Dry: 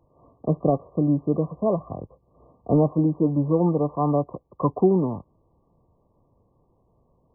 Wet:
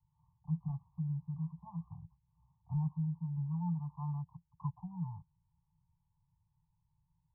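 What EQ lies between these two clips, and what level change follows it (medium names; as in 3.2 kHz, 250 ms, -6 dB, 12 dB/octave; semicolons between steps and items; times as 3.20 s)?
cascade formant filter u; Chebyshev band-stop 170–610 Hz, order 5; elliptic band-stop 260–980 Hz, stop band 60 dB; +4.5 dB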